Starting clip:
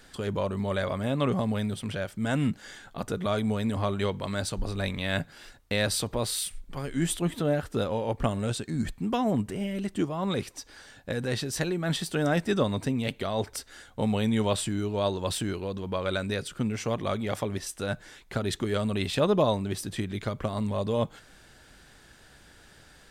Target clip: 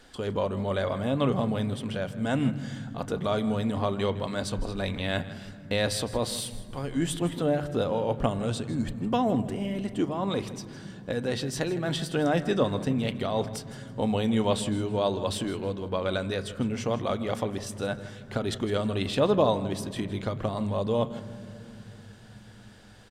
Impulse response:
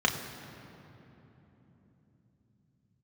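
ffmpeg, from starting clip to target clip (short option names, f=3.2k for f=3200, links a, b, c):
-filter_complex "[0:a]highshelf=f=9k:g=-8.5,aecho=1:1:160|320|480:0.15|0.0419|0.0117,asplit=2[a][b];[1:a]atrim=start_sample=2205,lowpass=2.9k[c];[b][c]afir=irnorm=-1:irlink=0,volume=-20.5dB[d];[a][d]amix=inputs=2:normalize=0"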